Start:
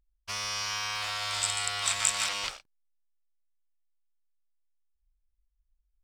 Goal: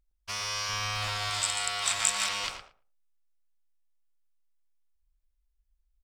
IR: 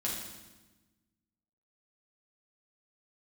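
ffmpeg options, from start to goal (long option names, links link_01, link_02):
-filter_complex "[0:a]asettb=1/sr,asplit=3[link_01][link_02][link_03];[link_01]atrim=end=0.694[link_04];[link_02]atrim=start=0.69:end=1.3,asetpts=PTS-STARTPTS,afade=type=in:duration=0.004:curve=qsin,afade=type=out:start_time=0.606:duration=0.004:curve=qsin,lowshelf=frequency=330:gain=11[link_05];[link_03]atrim=start=1.296[link_06];[link_04][link_05]acrossfade=duration=0.004:curve1=hsin:curve2=qsin[link_07];[link_07][link_06]acrossfade=duration=0.004:curve1=qsin:curve2=hsin,asplit=2[link_08][link_09];[link_09]adelay=113,lowpass=frequency=1300:poles=1,volume=-5.5dB,asplit=2[link_10][link_11];[link_11]adelay=113,lowpass=frequency=1300:poles=1,volume=0.16,asplit=2[link_12][link_13];[link_13]adelay=113,lowpass=frequency=1300:poles=1,volume=0.16[link_14];[link_08][link_10][link_12][link_14]amix=inputs=4:normalize=0"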